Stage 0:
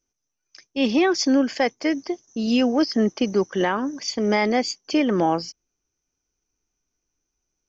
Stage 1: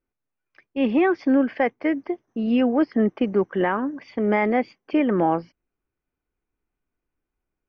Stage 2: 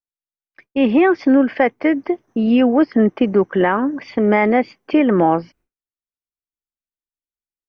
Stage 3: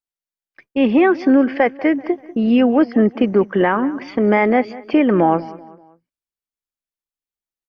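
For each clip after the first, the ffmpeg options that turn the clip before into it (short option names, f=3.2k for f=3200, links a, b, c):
-af "lowpass=f=2.4k:w=0.5412,lowpass=f=2.4k:w=1.3066"
-filter_complex "[0:a]agate=range=-33dB:threshold=-51dB:ratio=3:detection=peak,asplit=2[a][b];[b]acompressor=threshold=-27dB:ratio=6,volume=0dB[c];[a][c]amix=inputs=2:normalize=0,volume=3.5dB"
-filter_complex "[0:a]asplit=2[a][b];[b]adelay=193,lowpass=f=3.9k:p=1,volume=-18.5dB,asplit=2[c][d];[d]adelay=193,lowpass=f=3.9k:p=1,volume=0.42,asplit=2[e][f];[f]adelay=193,lowpass=f=3.9k:p=1,volume=0.42[g];[a][c][e][g]amix=inputs=4:normalize=0"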